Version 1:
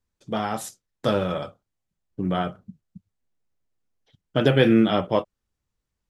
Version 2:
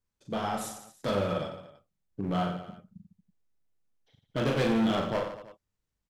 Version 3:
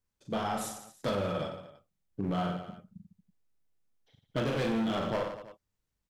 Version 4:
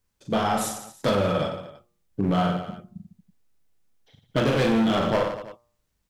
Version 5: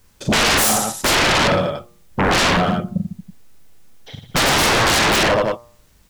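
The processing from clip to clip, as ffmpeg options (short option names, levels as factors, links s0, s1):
-filter_complex "[0:a]volume=9.44,asoftclip=hard,volume=0.106,asplit=2[s0][s1];[s1]aecho=0:1:40|90|152.5|230.6|328.3:0.631|0.398|0.251|0.158|0.1[s2];[s0][s2]amix=inputs=2:normalize=0,volume=0.531"
-af "alimiter=limit=0.0668:level=0:latency=1:release=26"
-af "bandreject=f=118.8:t=h:w=4,bandreject=f=237.6:t=h:w=4,bandreject=f=356.4:t=h:w=4,bandreject=f=475.2:t=h:w=4,bandreject=f=594:t=h:w=4,bandreject=f=712.8:t=h:w=4,bandreject=f=831.6:t=h:w=4,bandreject=f=950.4:t=h:w=4,bandreject=f=1069.2:t=h:w=4,bandreject=f=1188:t=h:w=4,bandreject=f=1306.8:t=h:w=4,volume=2.82"
-af "aeval=exprs='0.237*sin(PI/2*7.08*val(0)/0.237)':c=same"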